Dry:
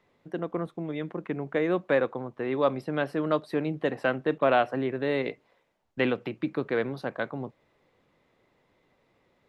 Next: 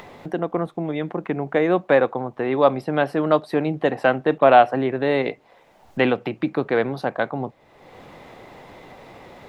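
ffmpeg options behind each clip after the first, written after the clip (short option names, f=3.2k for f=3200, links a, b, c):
-filter_complex "[0:a]equalizer=f=770:t=o:w=0.52:g=7,asplit=2[a][b];[b]acompressor=mode=upward:threshold=-27dB:ratio=2.5,volume=3dB[c];[a][c]amix=inputs=2:normalize=0,volume=-1.5dB"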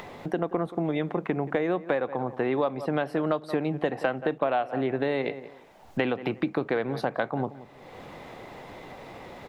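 -filter_complex "[0:a]asplit=2[a][b];[b]adelay=177,lowpass=f=2k:p=1,volume=-18dB,asplit=2[c][d];[d]adelay=177,lowpass=f=2k:p=1,volume=0.23[e];[a][c][e]amix=inputs=3:normalize=0,acompressor=threshold=-22dB:ratio=12"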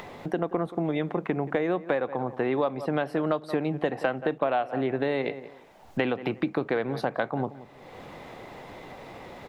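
-af anull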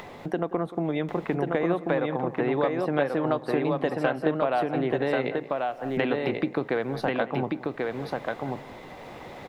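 -af "aecho=1:1:1088:0.708"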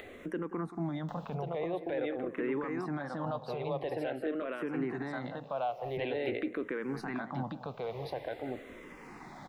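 -filter_complex "[0:a]alimiter=limit=-20.5dB:level=0:latency=1:release=18,asplit=2[a][b];[b]afreqshift=-0.47[c];[a][c]amix=inputs=2:normalize=1,volume=-3dB"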